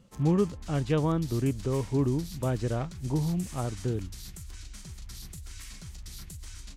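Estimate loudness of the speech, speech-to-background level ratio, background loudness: -29.5 LUFS, 15.0 dB, -44.5 LUFS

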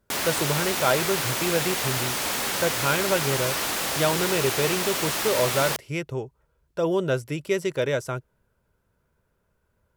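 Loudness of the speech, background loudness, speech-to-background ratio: -27.0 LUFS, -25.0 LUFS, -2.0 dB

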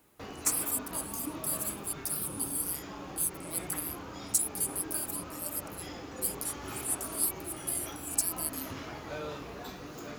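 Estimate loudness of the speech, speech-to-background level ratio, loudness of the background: -33.0 LUFS, 9.0 dB, -42.0 LUFS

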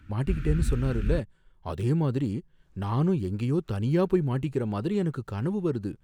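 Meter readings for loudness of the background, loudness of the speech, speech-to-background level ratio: -32.0 LUFS, -28.5 LUFS, 3.5 dB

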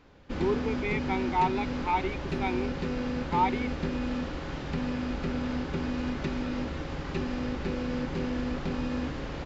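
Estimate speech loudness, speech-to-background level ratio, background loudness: -31.0 LUFS, 2.0 dB, -33.0 LUFS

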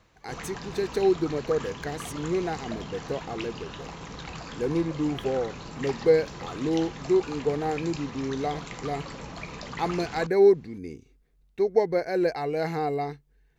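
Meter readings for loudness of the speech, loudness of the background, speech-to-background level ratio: -27.5 LUFS, -39.0 LUFS, 11.5 dB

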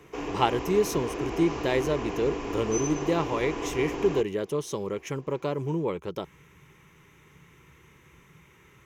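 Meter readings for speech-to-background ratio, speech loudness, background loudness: 4.5 dB, -28.5 LUFS, -33.0 LUFS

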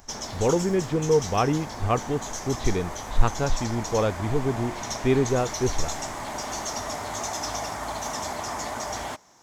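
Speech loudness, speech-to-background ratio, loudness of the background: -26.5 LUFS, 6.0 dB, -32.5 LUFS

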